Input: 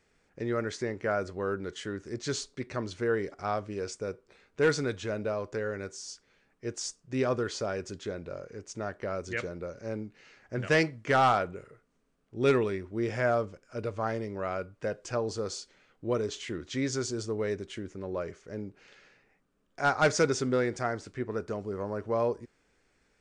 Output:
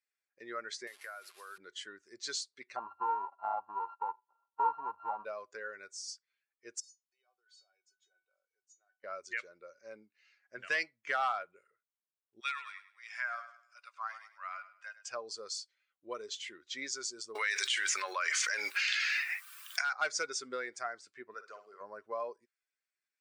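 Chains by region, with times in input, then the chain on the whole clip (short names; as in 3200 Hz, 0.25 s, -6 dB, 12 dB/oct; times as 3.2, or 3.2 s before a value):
0.87–1.58 delta modulation 64 kbps, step -39 dBFS + weighting filter A + compressor, threshold -34 dBFS
2.76–5.25 sample sorter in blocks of 32 samples + de-esser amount 50% + synth low-pass 910 Hz, resonance Q 5.3
6.8–9.04 compressor 20:1, threshold -34 dBFS + elliptic high-pass 350 Hz + resonator 750 Hz, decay 0.26 s, mix 90%
12.4–15.08 inverse Chebyshev high-pass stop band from 150 Hz, stop band 80 dB + feedback echo 0.102 s, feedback 45%, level -9.5 dB
17.35–19.93 HPF 1400 Hz + fast leveller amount 100%
21.34–21.81 weighting filter A + flutter echo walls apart 10.2 m, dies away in 0.43 s
whole clip: per-bin expansion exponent 1.5; HPF 1100 Hz 12 dB/oct; compressor 2:1, threshold -43 dBFS; gain +7 dB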